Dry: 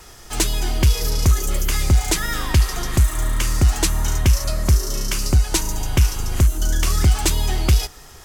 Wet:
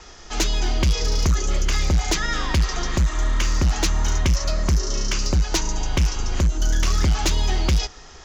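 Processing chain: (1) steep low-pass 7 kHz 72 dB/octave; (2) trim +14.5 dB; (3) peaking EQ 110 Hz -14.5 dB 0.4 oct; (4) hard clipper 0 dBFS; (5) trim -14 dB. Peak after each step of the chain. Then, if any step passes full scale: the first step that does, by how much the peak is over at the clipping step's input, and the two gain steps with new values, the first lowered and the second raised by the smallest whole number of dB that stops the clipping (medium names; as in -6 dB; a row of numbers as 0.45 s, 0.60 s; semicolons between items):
-6.5 dBFS, +8.0 dBFS, +8.0 dBFS, 0.0 dBFS, -14.0 dBFS; step 2, 8.0 dB; step 2 +6.5 dB, step 5 -6 dB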